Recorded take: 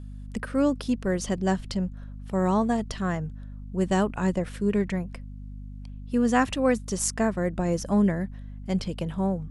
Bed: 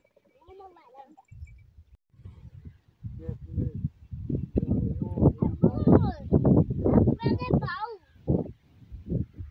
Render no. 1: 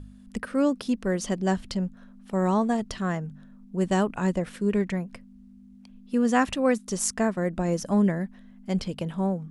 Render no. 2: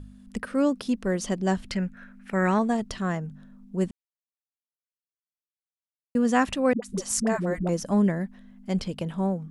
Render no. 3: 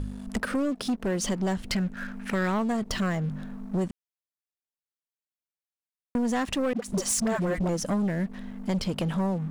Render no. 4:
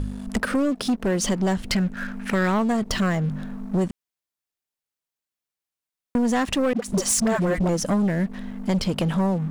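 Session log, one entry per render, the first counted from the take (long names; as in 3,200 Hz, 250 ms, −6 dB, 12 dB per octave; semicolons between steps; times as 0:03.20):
hum removal 50 Hz, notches 3
0:01.71–0:02.59: flat-topped bell 1,900 Hz +13 dB 1.1 octaves; 0:03.91–0:06.15: silence; 0:06.73–0:07.69: all-pass dispersion highs, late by 96 ms, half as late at 380 Hz
downward compressor 6 to 1, threshold −32 dBFS, peak gain reduction 14.5 dB; leveller curve on the samples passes 3
level +5 dB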